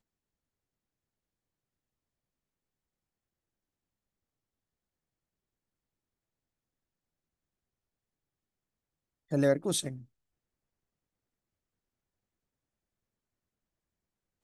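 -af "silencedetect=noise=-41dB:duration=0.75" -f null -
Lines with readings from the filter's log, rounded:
silence_start: 0.00
silence_end: 9.32 | silence_duration: 9.32
silence_start: 9.98
silence_end: 14.44 | silence_duration: 4.45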